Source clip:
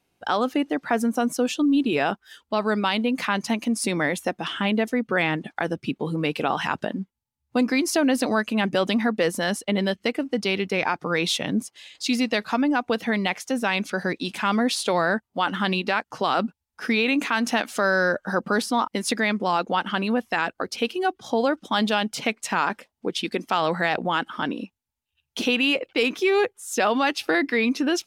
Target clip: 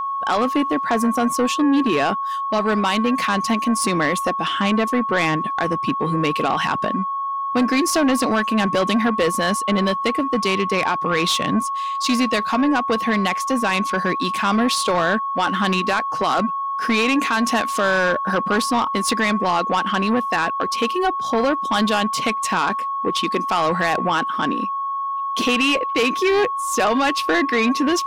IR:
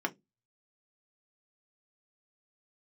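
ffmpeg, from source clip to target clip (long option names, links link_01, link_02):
-af "aeval=exprs='val(0)+0.0447*sin(2*PI*1100*n/s)':channel_layout=same,aeval=exprs='0.376*(cos(1*acos(clip(val(0)/0.376,-1,1)))-cos(1*PI/2))+0.0668*(cos(5*acos(clip(val(0)/0.376,-1,1)))-cos(5*PI/2))':channel_layout=same"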